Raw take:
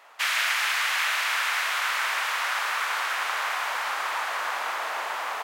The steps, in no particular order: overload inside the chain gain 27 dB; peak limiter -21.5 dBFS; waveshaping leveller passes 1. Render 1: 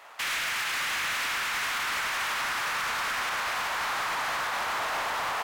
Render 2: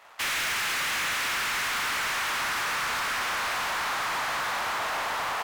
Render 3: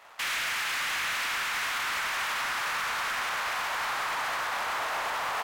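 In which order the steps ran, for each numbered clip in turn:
peak limiter > waveshaping leveller > overload inside the chain; waveshaping leveller > overload inside the chain > peak limiter; waveshaping leveller > peak limiter > overload inside the chain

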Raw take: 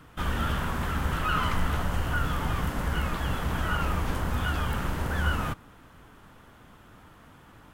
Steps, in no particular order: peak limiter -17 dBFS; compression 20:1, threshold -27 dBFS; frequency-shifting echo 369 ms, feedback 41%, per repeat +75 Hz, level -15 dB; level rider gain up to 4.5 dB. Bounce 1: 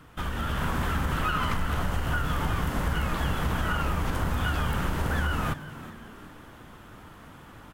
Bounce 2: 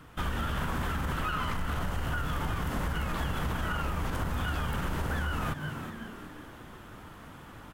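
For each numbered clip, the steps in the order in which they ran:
peak limiter > compression > frequency-shifting echo > level rider; frequency-shifting echo > level rider > peak limiter > compression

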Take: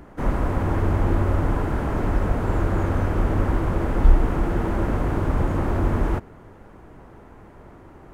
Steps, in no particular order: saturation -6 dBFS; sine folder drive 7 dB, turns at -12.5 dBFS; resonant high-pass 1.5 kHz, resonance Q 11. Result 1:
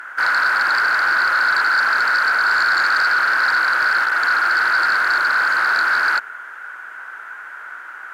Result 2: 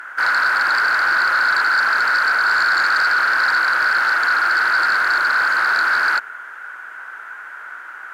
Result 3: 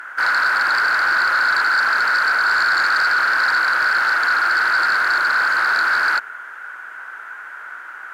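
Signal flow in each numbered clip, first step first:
saturation > resonant high-pass > sine folder; resonant high-pass > saturation > sine folder; resonant high-pass > sine folder > saturation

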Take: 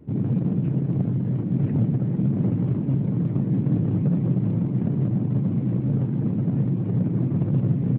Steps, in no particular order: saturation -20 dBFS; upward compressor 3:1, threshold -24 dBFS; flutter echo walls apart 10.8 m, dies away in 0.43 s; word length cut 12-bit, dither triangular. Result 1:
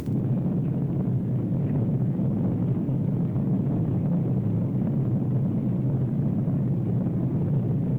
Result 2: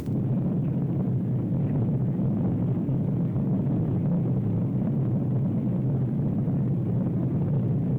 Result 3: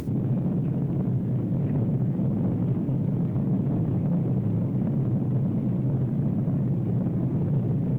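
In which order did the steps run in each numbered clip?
saturation > word length cut > upward compressor > flutter echo; word length cut > upward compressor > flutter echo > saturation; saturation > flutter echo > word length cut > upward compressor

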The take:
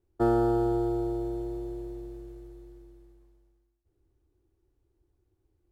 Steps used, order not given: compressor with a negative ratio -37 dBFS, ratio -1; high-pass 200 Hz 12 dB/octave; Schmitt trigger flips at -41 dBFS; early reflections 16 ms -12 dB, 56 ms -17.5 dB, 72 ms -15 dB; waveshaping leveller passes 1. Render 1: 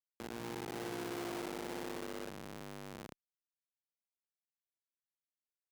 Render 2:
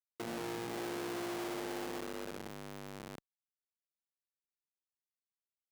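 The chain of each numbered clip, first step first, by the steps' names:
early reflections > waveshaping leveller > compressor with a negative ratio > Schmitt trigger > high-pass; compressor with a negative ratio > early reflections > waveshaping leveller > Schmitt trigger > high-pass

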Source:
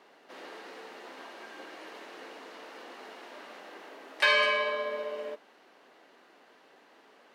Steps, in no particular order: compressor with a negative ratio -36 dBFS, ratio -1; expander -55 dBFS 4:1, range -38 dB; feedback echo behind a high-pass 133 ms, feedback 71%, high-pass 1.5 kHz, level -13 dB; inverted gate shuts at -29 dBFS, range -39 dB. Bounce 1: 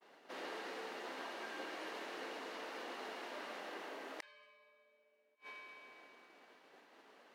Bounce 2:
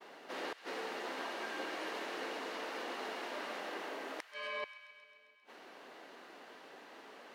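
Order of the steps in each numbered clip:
expander > feedback echo behind a high-pass > inverted gate > compressor with a negative ratio; compressor with a negative ratio > expander > inverted gate > feedback echo behind a high-pass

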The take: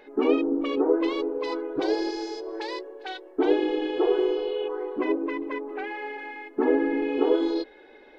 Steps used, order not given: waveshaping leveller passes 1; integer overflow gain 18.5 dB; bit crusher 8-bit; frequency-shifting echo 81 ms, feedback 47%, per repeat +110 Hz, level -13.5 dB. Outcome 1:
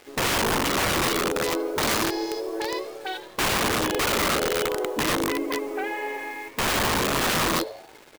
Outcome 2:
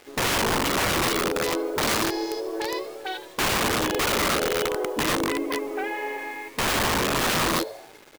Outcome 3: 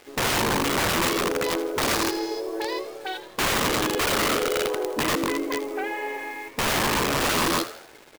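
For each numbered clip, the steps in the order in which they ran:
waveshaping leveller > bit crusher > frequency-shifting echo > integer overflow; waveshaping leveller > frequency-shifting echo > integer overflow > bit crusher; waveshaping leveller > integer overflow > bit crusher > frequency-shifting echo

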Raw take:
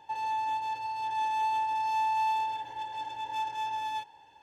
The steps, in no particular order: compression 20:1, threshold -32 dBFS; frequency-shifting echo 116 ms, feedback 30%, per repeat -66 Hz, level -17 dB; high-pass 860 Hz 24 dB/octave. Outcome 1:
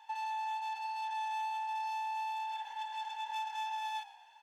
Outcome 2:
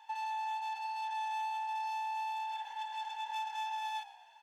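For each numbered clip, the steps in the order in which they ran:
compression > frequency-shifting echo > high-pass; compression > high-pass > frequency-shifting echo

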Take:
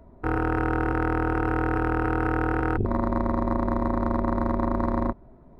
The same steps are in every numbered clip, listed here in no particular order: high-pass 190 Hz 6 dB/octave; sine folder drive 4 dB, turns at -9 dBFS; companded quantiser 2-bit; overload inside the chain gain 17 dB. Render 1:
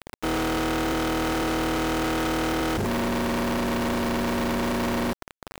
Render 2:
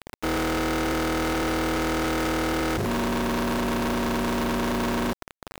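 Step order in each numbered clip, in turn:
high-pass > sine folder > overload inside the chain > companded quantiser; sine folder > overload inside the chain > high-pass > companded quantiser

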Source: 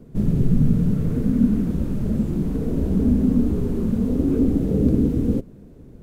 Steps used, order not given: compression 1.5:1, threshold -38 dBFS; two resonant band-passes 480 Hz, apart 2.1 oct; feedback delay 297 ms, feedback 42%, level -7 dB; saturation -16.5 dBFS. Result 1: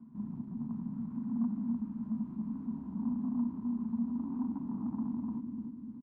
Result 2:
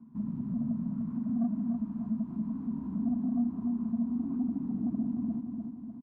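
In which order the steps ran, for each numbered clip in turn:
feedback delay > saturation > compression > two resonant band-passes; two resonant band-passes > saturation > feedback delay > compression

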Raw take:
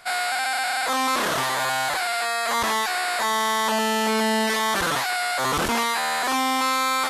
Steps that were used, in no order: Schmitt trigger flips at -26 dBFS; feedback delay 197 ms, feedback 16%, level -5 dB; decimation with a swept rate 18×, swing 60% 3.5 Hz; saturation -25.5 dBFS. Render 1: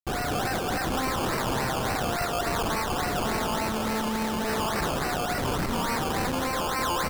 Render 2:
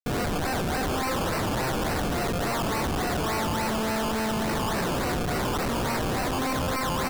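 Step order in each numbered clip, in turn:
saturation > Schmitt trigger > feedback delay > decimation with a swept rate; feedback delay > decimation with a swept rate > Schmitt trigger > saturation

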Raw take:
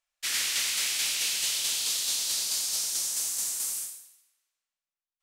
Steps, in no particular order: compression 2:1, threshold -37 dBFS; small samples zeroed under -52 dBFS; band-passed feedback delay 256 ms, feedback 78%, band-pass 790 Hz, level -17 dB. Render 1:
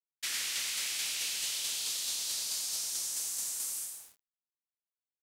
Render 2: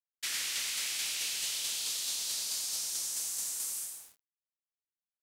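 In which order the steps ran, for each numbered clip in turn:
band-passed feedback delay > small samples zeroed > compression; band-passed feedback delay > compression > small samples zeroed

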